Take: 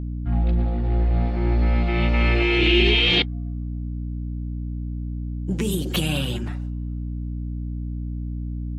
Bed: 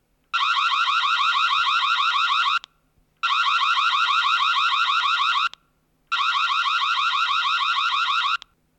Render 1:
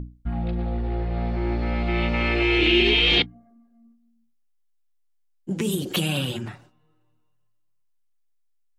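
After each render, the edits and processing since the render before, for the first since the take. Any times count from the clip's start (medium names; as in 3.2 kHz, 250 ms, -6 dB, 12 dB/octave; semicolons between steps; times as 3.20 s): hum notches 60/120/180/240/300 Hz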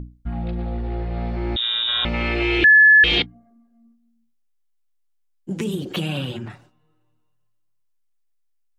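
1.56–2.05 s: frequency inversion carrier 3.7 kHz; 2.64–3.04 s: bleep 1.72 kHz -7.5 dBFS; 5.64–6.50 s: peaking EQ 11 kHz -12 dB 1.8 oct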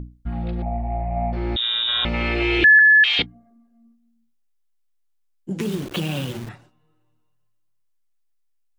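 0.62–1.33 s: FFT filter 270 Hz 0 dB, 450 Hz -24 dB, 660 Hz +14 dB, 1.5 kHz -16 dB, 2.3 kHz 0 dB, 3.2 kHz -21 dB; 2.79–3.19 s: Bessel high-pass 1.2 kHz, order 6; 5.60–6.49 s: send-on-delta sampling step -32.5 dBFS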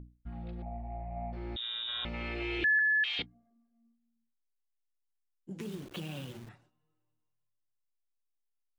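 trim -15 dB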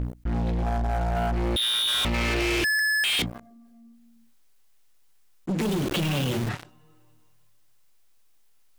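waveshaping leveller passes 5; level flattener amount 50%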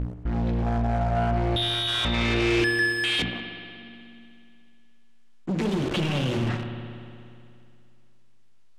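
distance through air 70 m; spring tank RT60 2.5 s, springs 60 ms, chirp 35 ms, DRR 6 dB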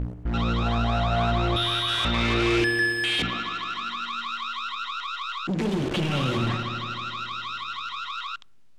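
add bed -11.5 dB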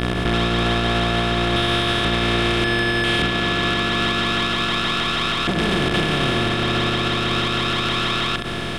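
spectral levelling over time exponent 0.2; peak limiter -11 dBFS, peak gain reduction 7.5 dB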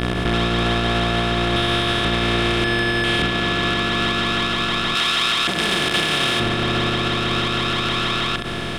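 4.95–6.40 s: tilt EQ +2.5 dB/octave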